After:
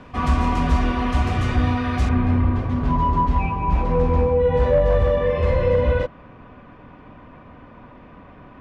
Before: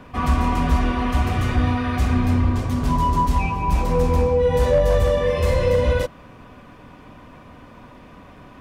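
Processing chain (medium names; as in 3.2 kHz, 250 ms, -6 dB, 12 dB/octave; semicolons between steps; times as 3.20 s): low-pass 7.5 kHz 12 dB/octave, from 2.09 s 2.4 kHz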